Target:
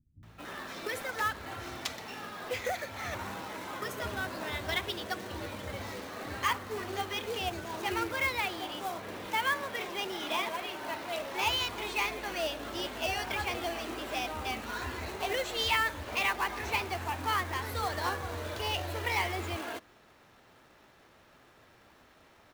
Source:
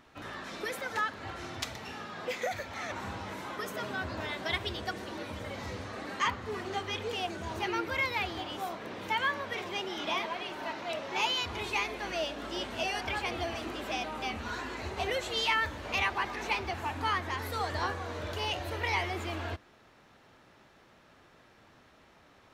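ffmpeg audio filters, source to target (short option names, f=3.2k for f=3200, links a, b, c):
-filter_complex "[0:a]acrusher=bits=3:mode=log:mix=0:aa=0.000001,acrossover=split=170[a][b];[b]adelay=230[c];[a][c]amix=inputs=2:normalize=0"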